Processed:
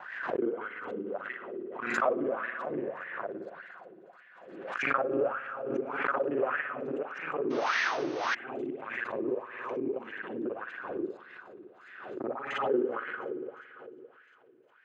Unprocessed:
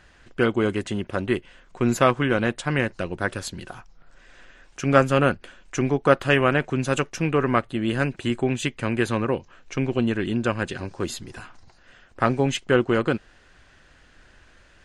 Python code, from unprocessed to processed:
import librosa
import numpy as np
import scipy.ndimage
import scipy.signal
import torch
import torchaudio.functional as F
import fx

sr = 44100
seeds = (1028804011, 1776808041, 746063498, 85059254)

y = fx.local_reverse(x, sr, ms=38.0)
y = scipy.signal.sosfilt(scipy.signal.butter(2, 140.0, 'highpass', fs=sr, output='sos'), y)
y = fx.high_shelf(y, sr, hz=5000.0, db=-10.5)
y = fx.echo_wet_highpass(y, sr, ms=354, feedback_pct=85, hz=3400.0, wet_db=-13.5)
y = fx.rev_spring(y, sr, rt60_s=2.8, pass_ms=(56,), chirp_ms=70, drr_db=2.0)
y = fx.spec_paint(y, sr, seeds[0], shape='noise', start_s=7.5, length_s=0.85, low_hz=290.0, high_hz=6500.0, level_db=-15.0)
y = fx.wah_lfo(y, sr, hz=1.7, low_hz=330.0, high_hz=1900.0, q=4.9)
y = fx.pre_swell(y, sr, db_per_s=49.0)
y = y * librosa.db_to_amplitude(-3.0)